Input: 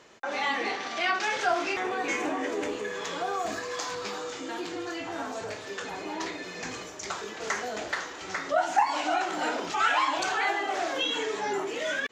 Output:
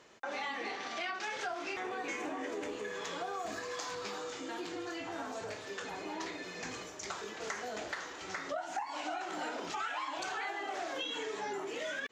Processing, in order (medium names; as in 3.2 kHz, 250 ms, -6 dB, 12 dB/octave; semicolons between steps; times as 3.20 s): compression 6:1, threshold -30 dBFS, peak gain reduction 12 dB; trim -5 dB